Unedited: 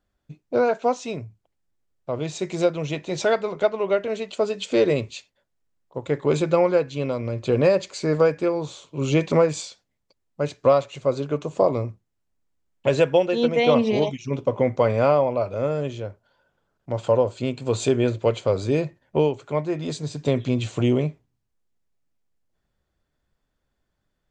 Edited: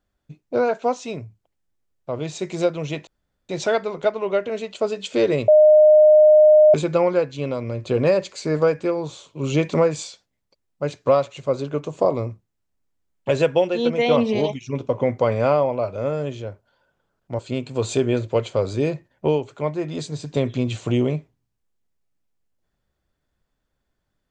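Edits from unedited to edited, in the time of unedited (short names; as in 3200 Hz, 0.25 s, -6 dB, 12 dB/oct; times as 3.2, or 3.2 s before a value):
3.07 insert room tone 0.42 s
5.06–6.32 bleep 612 Hz -8 dBFS
16.97–17.3 cut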